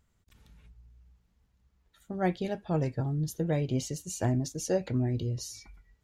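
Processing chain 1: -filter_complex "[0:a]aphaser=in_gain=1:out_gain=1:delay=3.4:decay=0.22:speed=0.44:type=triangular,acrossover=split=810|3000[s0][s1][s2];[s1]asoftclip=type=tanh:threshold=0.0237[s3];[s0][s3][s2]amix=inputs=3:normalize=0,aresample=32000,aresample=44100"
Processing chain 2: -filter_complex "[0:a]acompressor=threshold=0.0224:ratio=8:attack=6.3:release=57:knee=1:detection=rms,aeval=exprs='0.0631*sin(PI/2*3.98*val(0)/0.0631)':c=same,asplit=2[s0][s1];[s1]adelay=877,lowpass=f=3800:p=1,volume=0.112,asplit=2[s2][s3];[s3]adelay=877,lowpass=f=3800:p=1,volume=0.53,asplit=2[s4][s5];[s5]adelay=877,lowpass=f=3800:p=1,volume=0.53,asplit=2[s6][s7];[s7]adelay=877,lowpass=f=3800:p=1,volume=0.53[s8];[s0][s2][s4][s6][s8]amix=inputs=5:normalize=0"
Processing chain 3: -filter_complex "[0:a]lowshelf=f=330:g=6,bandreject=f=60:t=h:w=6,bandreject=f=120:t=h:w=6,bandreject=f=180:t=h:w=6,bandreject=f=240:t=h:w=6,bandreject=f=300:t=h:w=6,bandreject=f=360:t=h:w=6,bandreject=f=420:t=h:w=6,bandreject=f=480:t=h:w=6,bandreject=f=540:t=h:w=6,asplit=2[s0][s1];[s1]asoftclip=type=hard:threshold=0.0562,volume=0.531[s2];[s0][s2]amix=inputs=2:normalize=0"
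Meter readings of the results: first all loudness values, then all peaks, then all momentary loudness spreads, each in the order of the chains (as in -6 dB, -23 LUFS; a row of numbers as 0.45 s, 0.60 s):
-31.5 LUFS, -28.0 LUFS, -25.5 LUFS; -14.0 dBFS, -22.5 dBFS, -12.5 dBFS; 8 LU, 17 LU, 8 LU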